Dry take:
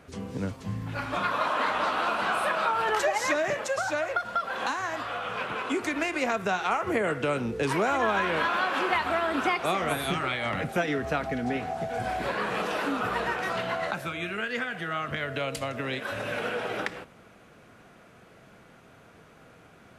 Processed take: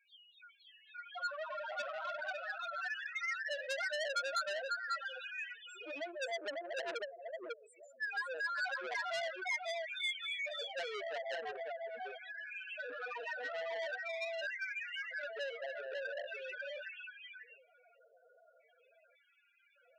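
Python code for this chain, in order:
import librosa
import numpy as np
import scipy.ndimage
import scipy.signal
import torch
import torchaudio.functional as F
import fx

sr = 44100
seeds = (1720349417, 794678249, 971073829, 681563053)

p1 = fx.weighting(x, sr, curve='A')
p2 = fx.spec_box(p1, sr, start_s=5.54, length_s=2.47, low_hz=700.0, high_hz=7000.0, gain_db=-26)
p3 = scipy.signal.sosfilt(scipy.signal.butter(2, 42.0, 'highpass', fs=sr, output='sos'), p2)
p4 = fx.band_shelf(p3, sr, hz=2400.0, db=12.0, octaves=1.7)
p5 = fx.rider(p4, sr, range_db=4, speed_s=0.5)
p6 = p4 + (p5 * librosa.db_to_amplitude(-2.5))
p7 = np.clip(p6, -10.0 ** (-5.5 / 20.0), 10.0 ** (-5.5 / 20.0))
p8 = fx.filter_lfo_bandpass(p7, sr, shape='square', hz=0.43, low_hz=540.0, high_hz=6000.0, q=2.0)
p9 = fx.spec_topn(p8, sr, count=2)
p10 = p9 + fx.echo_single(p9, sr, ms=547, db=-3.0, dry=0)
p11 = fx.transformer_sat(p10, sr, knee_hz=3800.0)
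y = p11 * librosa.db_to_amplitude(-3.0)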